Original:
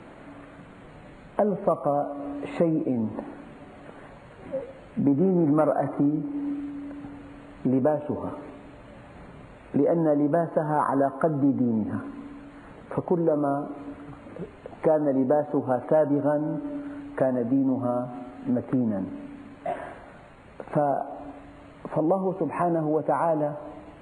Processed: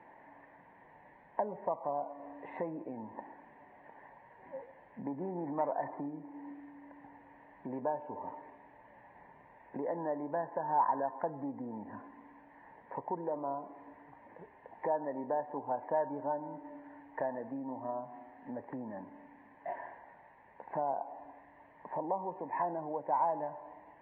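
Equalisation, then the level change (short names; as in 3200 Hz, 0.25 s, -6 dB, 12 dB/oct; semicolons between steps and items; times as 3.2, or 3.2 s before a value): double band-pass 1300 Hz, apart 0.96 oct; tilt -3.5 dB/oct; 0.0 dB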